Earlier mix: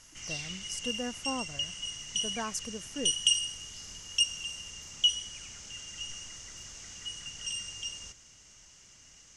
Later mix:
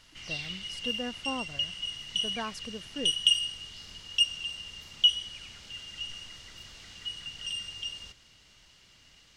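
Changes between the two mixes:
background: remove low-pass 7.3 kHz 12 dB/octave; master: add resonant high shelf 5.1 kHz -8 dB, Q 3

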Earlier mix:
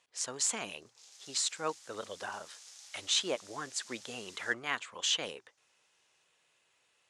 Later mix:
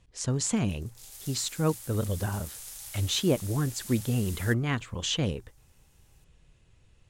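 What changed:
background: remove four-pole ladder low-pass 7.2 kHz, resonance 35%; master: remove high-pass 720 Hz 12 dB/octave

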